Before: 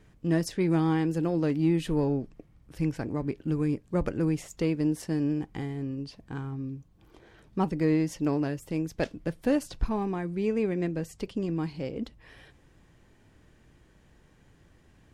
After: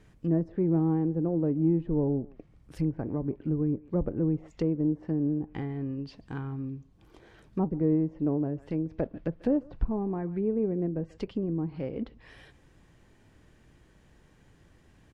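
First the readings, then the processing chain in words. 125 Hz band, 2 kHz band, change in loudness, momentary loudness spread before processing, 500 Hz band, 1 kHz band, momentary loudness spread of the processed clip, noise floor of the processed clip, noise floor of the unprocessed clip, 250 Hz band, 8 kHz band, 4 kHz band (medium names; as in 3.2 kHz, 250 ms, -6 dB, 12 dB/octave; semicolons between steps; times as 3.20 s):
0.0 dB, -11.0 dB, -0.5 dB, 10 LU, -1.0 dB, -6.0 dB, 10 LU, -60 dBFS, -60 dBFS, 0.0 dB, under -20 dB, under -10 dB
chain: speakerphone echo 140 ms, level -22 dB; low-pass that closes with the level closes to 620 Hz, closed at -25.5 dBFS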